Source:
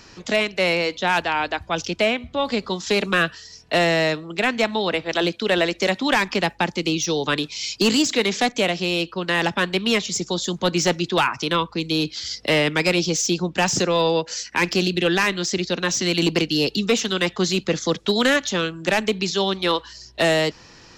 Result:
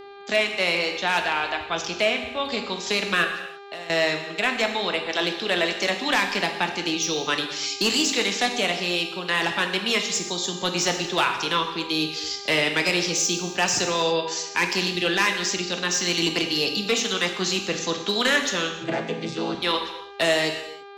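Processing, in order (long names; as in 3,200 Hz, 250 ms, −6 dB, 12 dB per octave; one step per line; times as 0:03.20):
0:18.79–0:19.55: channel vocoder with a chord as carrier major triad, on A2
noise gate −33 dBFS, range −28 dB
tilt shelving filter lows −4 dB, about 710 Hz
0:03.24–0:03.90: downward compressor 5 to 1, threshold −33 dBFS, peak gain reduction 17 dB
hum with harmonics 400 Hz, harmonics 12, −36 dBFS −8 dB per octave
reverb whose tail is shaped and stops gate 360 ms falling, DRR 4 dB
level −5 dB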